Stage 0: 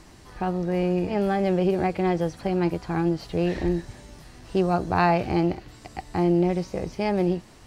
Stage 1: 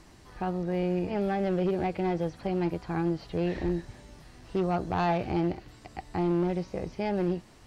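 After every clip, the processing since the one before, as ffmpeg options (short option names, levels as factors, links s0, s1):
-filter_complex "[0:a]asoftclip=type=hard:threshold=0.141,acrossover=split=4700[s0][s1];[s1]acompressor=threshold=0.00126:ratio=4:attack=1:release=60[s2];[s0][s2]amix=inputs=2:normalize=0,volume=0.596"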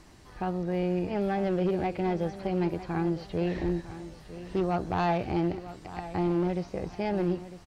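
-af "aecho=1:1:953|1906|2859:0.2|0.0619|0.0192"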